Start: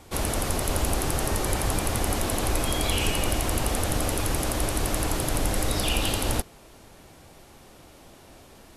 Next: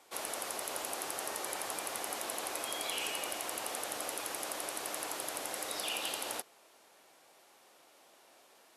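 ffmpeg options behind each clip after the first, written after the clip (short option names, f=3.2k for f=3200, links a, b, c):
-af "highpass=530,volume=-8.5dB"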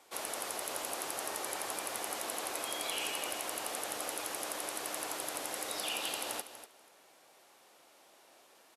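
-af "aecho=1:1:242|484:0.251|0.0402"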